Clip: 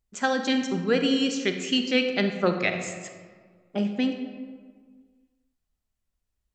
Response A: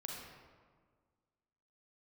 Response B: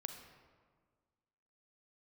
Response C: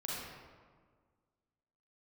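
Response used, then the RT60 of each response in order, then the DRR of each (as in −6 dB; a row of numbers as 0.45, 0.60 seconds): B; 1.7, 1.7, 1.7 seconds; −1.5, 5.5, −6.0 decibels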